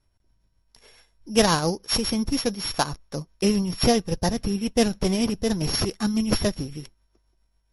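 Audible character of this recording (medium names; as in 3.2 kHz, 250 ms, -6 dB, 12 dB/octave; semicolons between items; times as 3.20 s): a buzz of ramps at a fixed pitch in blocks of 8 samples; tremolo triangle 7.3 Hz, depth 45%; MP3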